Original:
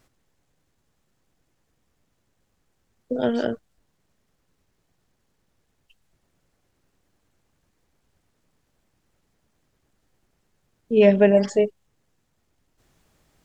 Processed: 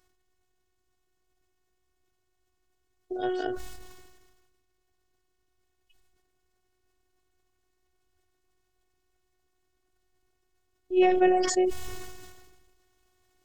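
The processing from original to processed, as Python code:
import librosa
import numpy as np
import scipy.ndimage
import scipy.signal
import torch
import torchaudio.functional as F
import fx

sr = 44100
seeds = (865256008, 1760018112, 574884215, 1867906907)

y = fx.robotise(x, sr, hz=368.0)
y = fx.sustainer(y, sr, db_per_s=38.0)
y = y * librosa.db_to_amplitude(-4.0)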